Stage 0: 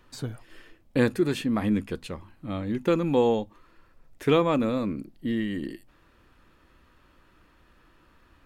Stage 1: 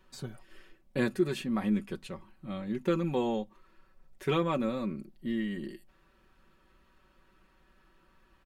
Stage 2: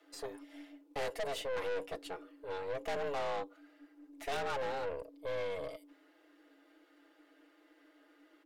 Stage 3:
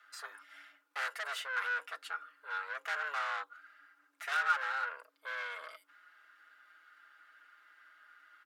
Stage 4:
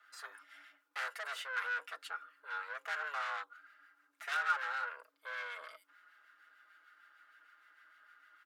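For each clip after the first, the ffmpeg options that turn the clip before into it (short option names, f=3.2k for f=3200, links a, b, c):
-af "aecho=1:1:5.3:0.68,volume=-7dB"
-af "afreqshift=280,aeval=exprs='(tanh(56.2*val(0)+0.55)-tanh(0.55))/56.2':c=same,volume=1dB"
-af "highpass=f=1.4k:t=q:w=6"
-filter_complex "[0:a]acrossover=split=1300[a][b];[a]aeval=exprs='val(0)*(1-0.5/2+0.5/2*cos(2*PI*6.6*n/s))':c=same[c];[b]aeval=exprs='val(0)*(1-0.5/2-0.5/2*cos(2*PI*6.6*n/s))':c=same[d];[c][d]amix=inputs=2:normalize=0"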